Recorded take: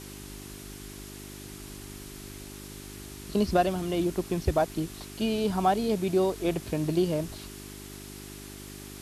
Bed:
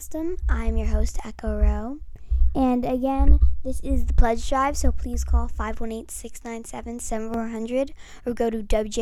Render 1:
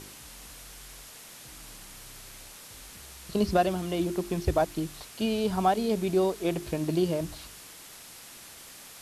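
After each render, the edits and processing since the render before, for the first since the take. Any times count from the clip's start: de-hum 50 Hz, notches 8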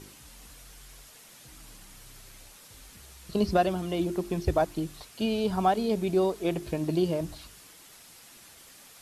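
noise reduction 6 dB, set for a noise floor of -48 dBFS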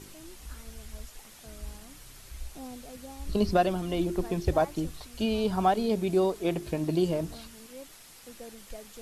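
add bed -22 dB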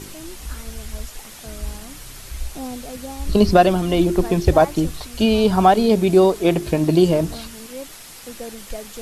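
trim +11.5 dB; peak limiter -2 dBFS, peak gain reduction 1.5 dB

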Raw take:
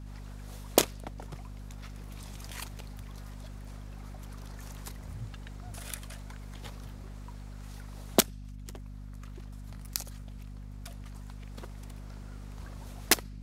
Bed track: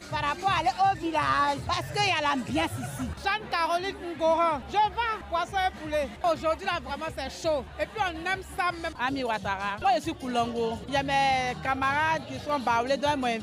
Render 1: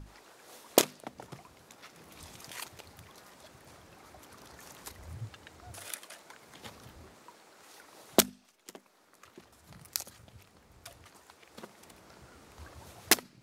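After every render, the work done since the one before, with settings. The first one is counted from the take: hum notches 50/100/150/200/250 Hz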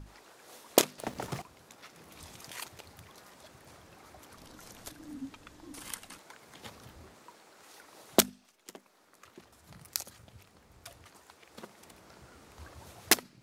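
0.98–1.42 s: waveshaping leveller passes 3; 4.37–6.19 s: frequency shift -380 Hz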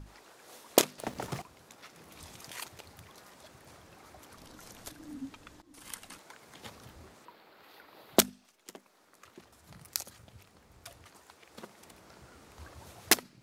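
5.62–6.06 s: fade in, from -18.5 dB; 7.25–8.17 s: high-order bell 7.5 kHz -14.5 dB 1.1 oct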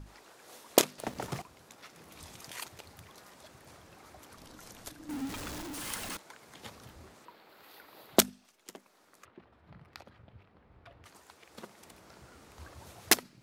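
5.09–6.17 s: jump at every zero crossing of -36 dBFS; 7.49–8.07 s: treble shelf 7.9 kHz +8 dB; 9.25–11.04 s: distance through air 400 m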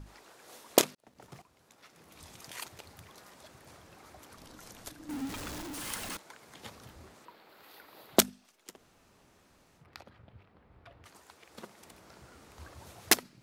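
0.95–2.66 s: fade in; 8.75–9.81 s: room tone, crossfade 0.10 s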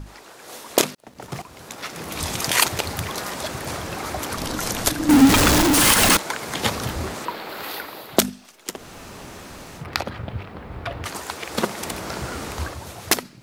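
level rider gain up to 13.5 dB; loudness maximiser +11.5 dB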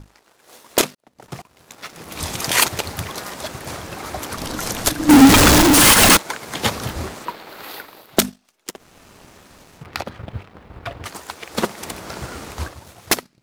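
waveshaping leveller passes 2; upward expansion 1.5:1, over -28 dBFS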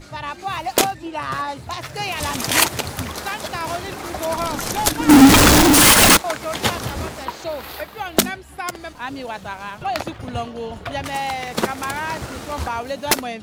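add bed track -1 dB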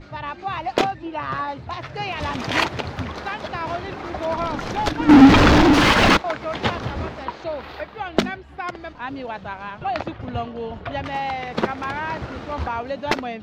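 distance through air 230 m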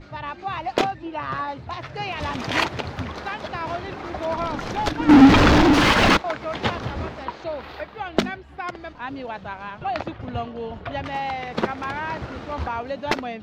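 trim -1.5 dB

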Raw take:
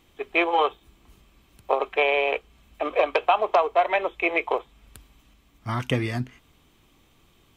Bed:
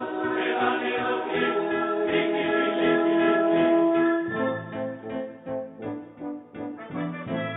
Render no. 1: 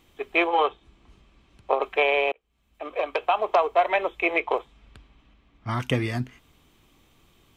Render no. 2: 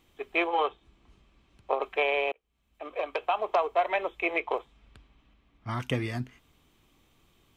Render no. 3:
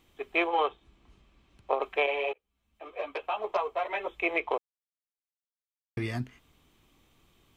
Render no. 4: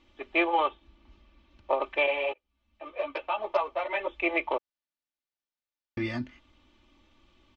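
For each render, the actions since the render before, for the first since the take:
0.47–1.82 s: distance through air 85 m; 2.32–3.66 s: fade in; 4.40–5.80 s: level-controlled noise filter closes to 3 kHz, open at -22 dBFS
trim -5 dB
2.06–4.08 s: three-phase chorus; 4.58–5.97 s: mute
low-pass 5.4 kHz 24 dB/octave; comb 3.4 ms, depth 73%

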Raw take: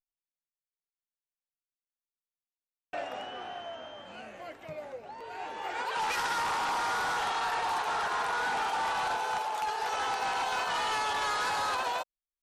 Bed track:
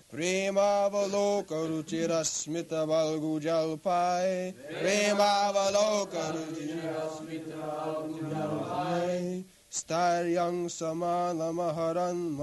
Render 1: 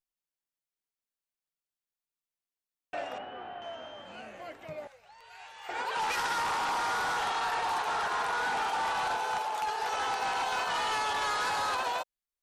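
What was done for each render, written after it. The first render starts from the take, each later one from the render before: 3.18–3.62 s: distance through air 370 m; 4.87–5.69 s: amplifier tone stack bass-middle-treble 10-0-10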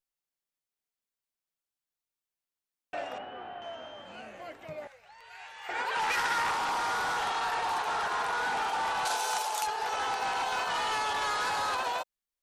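4.81–6.52 s: peaking EQ 1.9 kHz +5 dB 0.87 oct; 9.05–9.67 s: tone controls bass -9 dB, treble +14 dB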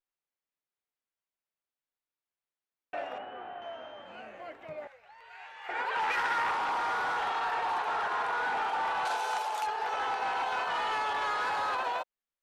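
tone controls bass -6 dB, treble -13 dB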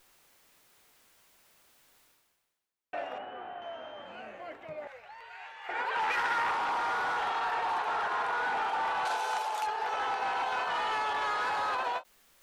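reverse; upward compressor, threshold -40 dBFS; reverse; endings held to a fixed fall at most 410 dB/s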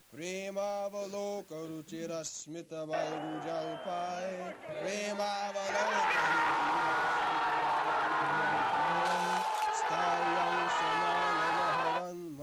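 add bed track -10 dB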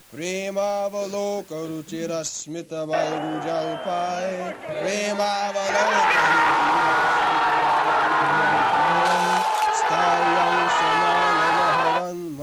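trim +11.5 dB

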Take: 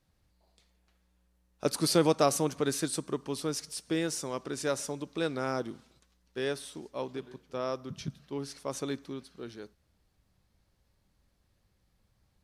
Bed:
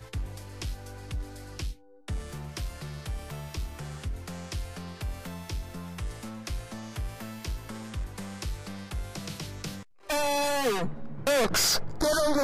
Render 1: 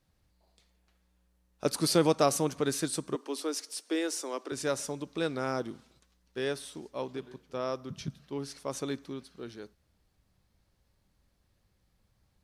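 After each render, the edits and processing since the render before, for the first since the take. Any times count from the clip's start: 3.15–4.52 s: steep high-pass 260 Hz 48 dB/octave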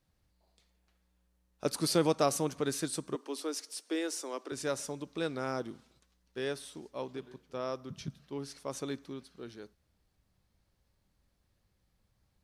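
trim -3 dB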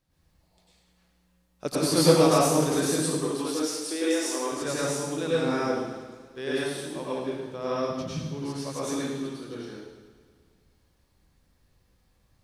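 plate-style reverb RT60 1 s, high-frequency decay 0.95×, pre-delay 85 ms, DRR -8 dB; modulated delay 107 ms, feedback 71%, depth 51 cents, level -16 dB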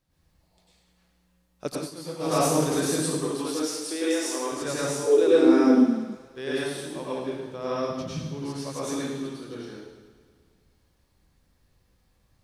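1.66–2.44 s: dip -18 dB, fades 0.25 s; 5.05–6.15 s: resonant high-pass 460 Hz -> 200 Hz, resonance Q 12

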